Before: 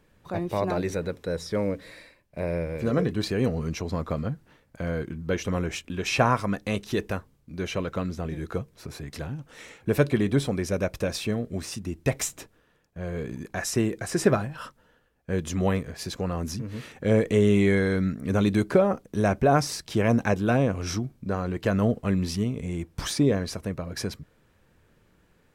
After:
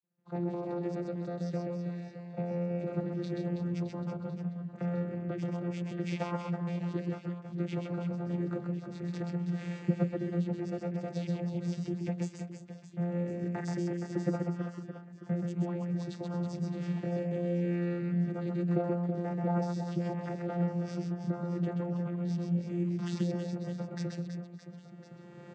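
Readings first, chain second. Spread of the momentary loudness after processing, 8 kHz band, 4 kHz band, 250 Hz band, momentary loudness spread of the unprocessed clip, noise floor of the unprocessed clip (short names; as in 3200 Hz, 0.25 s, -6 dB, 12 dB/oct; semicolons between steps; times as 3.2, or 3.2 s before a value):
7 LU, under -20 dB, -16.5 dB, -5.5 dB, 13 LU, -64 dBFS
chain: recorder AGC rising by 18 dB/s; vocoder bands 16, saw 174 Hz; expander -55 dBFS; on a send: reverse bouncing-ball echo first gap 0.13 s, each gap 1.5×, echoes 5; on the sum: gain -8.5 dB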